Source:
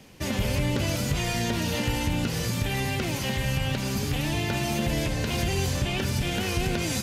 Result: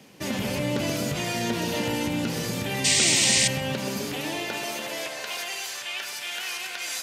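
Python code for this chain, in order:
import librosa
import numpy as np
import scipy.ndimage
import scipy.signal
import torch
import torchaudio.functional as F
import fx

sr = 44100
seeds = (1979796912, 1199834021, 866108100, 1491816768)

y = fx.filter_sweep_highpass(x, sr, from_hz=170.0, to_hz=1300.0, start_s=3.67, end_s=5.62, q=0.86)
y = fx.spec_paint(y, sr, seeds[0], shape='noise', start_s=2.84, length_s=0.64, low_hz=1800.0, high_hz=9100.0, level_db=-21.0)
y = fx.echo_banded(y, sr, ms=129, feedback_pct=46, hz=530.0, wet_db=-4.5)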